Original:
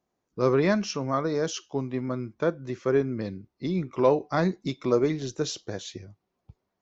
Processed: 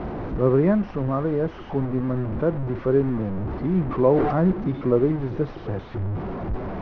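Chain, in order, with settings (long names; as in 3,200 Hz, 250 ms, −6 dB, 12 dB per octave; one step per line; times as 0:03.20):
linear delta modulator 32 kbit/s, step −27 dBFS
low-pass filter 1,500 Hz 12 dB per octave
spectral tilt −2.5 dB per octave
0:03.87–0:04.52: level that may fall only so fast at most 35 dB per second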